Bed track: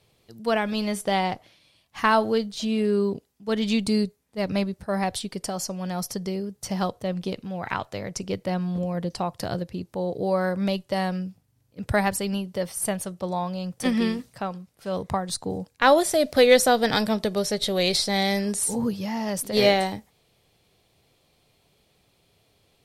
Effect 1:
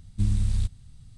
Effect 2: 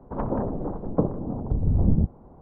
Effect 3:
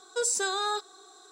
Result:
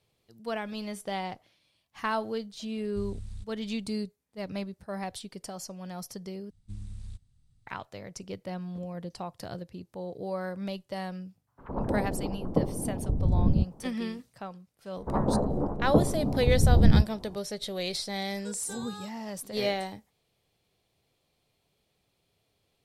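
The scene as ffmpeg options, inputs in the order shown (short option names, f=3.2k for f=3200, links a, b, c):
-filter_complex "[1:a]asplit=2[a][b];[2:a]asplit=2[c][d];[0:a]volume=-10dB[e];[c]acrossover=split=1400[f][g];[f]adelay=110[h];[h][g]amix=inputs=2:normalize=0[i];[d]asplit=2[j][k];[k]adelay=14,volume=-4.5dB[l];[j][l]amix=inputs=2:normalize=0[m];[3:a]equalizer=f=10k:t=o:w=1.3:g=6.5[n];[e]asplit=2[o][p];[o]atrim=end=6.504[q];[b]atrim=end=1.17,asetpts=PTS-STARTPTS,volume=-17dB[r];[p]atrim=start=7.666[s];[a]atrim=end=1.17,asetpts=PTS-STARTPTS,volume=-16dB,afade=t=in:d=0.004:c=hsin,afade=t=out:st=1.166:d=0.004:c=hsin,adelay=2770[t];[i]atrim=end=2.41,asetpts=PTS-STARTPTS,volume=-3dB,afade=t=in:d=0.004:c=hsin,afade=t=out:st=2.406:d=0.004:c=hsin,adelay=11470[u];[m]atrim=end=2.41,asetpts=PTS-STARTPTS,volume=-0.5dB,afade=t=in:d=0.004:c=hsin,afade=t=out:st=2.406:d=0.004:c=hsin,adelay=14960[v];[n]atrim=end=1.31,asetpts=PTS-STARTPTS,volume=-15.5dB,afade=t=in:d=0.004:c=hsin,afade=t=out:st=1.306:d=0.004:c=hsin,adelay=18290[w];[q][r]acrossfade=d=0.004:c1=hsin:c2=hsin[x];[x][s]acrossfade=d=0.004:c1=hsin:c2=hsin[y];[y][t][u][v][w]amix=inputs=5:normalize=0"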